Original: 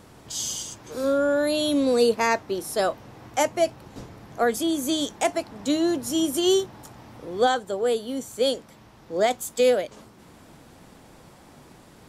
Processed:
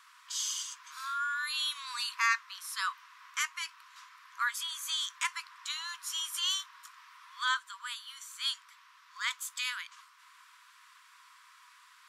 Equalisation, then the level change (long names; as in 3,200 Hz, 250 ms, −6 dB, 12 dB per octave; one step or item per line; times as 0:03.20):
linear-phase brick-wall high-pass 950 Hz
high-shelf EQ 5,700 Hz −9 dB
0.0 dB